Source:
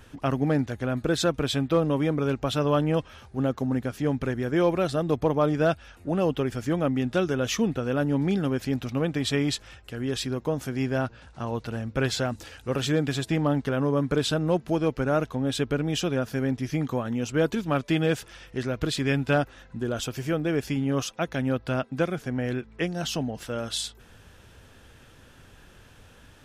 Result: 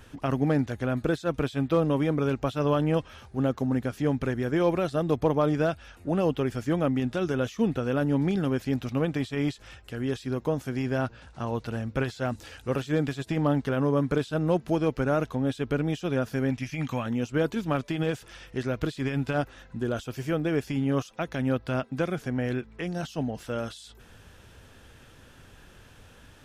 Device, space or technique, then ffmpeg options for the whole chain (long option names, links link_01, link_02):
de-esser from a sidechain: -filter_complex "[0:a]asettb=1/sr,asplit=3[link_01][link_02][link_03];[link_01]atrim=end=16.504[link_04];[link_02]atrim=start=16.5:end=17.06,asetpts=PTS-STARTPTS,afade=type=in:duration=0.004:curve=qsin,afade=type=out:start_time=0.556:duration=0.004:curve=qsin,equalizer=frequency=400:width_type=o:width=0.67:gain=-10,equalizer=frequency=2500:width_type=o:width=0.67:gain=11,equalizer=frequency=6300:width_type=o:width=0.67:gain=4[link_05];[link_03]atrim=start=17.056[link_06];[link_04][link_05]acrossfade=duration=0.004:curve1=hsin:curve2=qsin[link_07];[link_07][link_06]acrossfade=duration=0.004:curve1=qsin:curve2=hsin,asplit=2[link_08][link_09];[link_09]highpass=5200,apad=whole_len=1166142[link_10];[link_08][link_10]sidechaincompress=threshold=-48dB:ratio=10:attack=4.3:release=44"